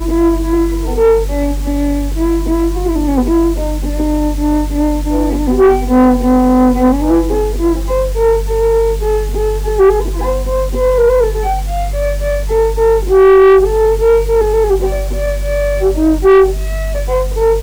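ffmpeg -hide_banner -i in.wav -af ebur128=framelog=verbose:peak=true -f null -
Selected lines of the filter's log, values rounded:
Integrated loudness:
  I:         -12.8 LUFS
  Threshold: -22.8 LUFS
Loudness range:
  LRA:         3.8 LU
  Threshold: -32.7 LUFS
  LRA low:   -14.7 LUFS
  LRA high:  -10.9 LUFS
True peak:
  Peak:       -4.2 dBFS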